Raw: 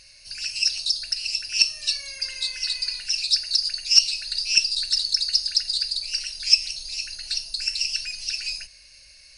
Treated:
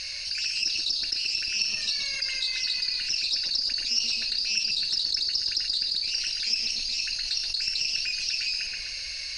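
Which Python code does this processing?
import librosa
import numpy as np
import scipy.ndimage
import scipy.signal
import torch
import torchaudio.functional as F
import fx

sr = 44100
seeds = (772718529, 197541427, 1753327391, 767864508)

p1 = librosa.effects.preemphasis(x, coef=0.9, zi=[0.0])
p2 = fx.cheby_harmonics(p1, sr, harmonics=(8,), levels_db=(-43,), full_scale_db=-4.5)
p3 = fx.air_absorb(p2, sr, metres=190.0)
p4 = p3 + fx.echo_filtered(p3, sr, ms=128, feedback_pct=53, hz=2100.0, wet_db=-6.0, dry=0)
y = fx.env_flatten(p4, sr, amount_pct=70)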